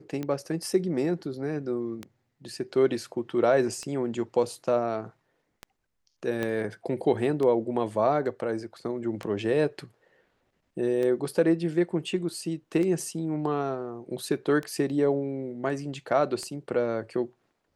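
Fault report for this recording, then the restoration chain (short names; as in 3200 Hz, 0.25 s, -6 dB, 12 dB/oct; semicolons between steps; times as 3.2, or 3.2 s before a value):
tick 33 1/3 rpm -20 dBFS
6.43 pop -17 dBFS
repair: de-click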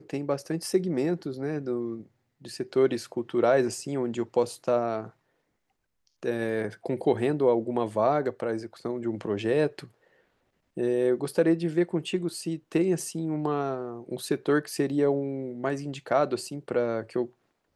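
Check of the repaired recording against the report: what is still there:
6.43 pop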